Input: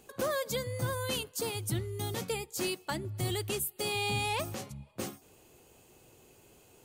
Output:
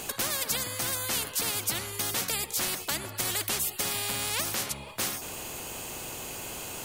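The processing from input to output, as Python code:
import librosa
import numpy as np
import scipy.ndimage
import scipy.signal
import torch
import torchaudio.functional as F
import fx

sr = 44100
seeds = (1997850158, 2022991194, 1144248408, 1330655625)

y = fx.spectral_comp(x, sr, ratio=4.0)
y = F.gain(torch.from_numpy(y), 8.5).numpy()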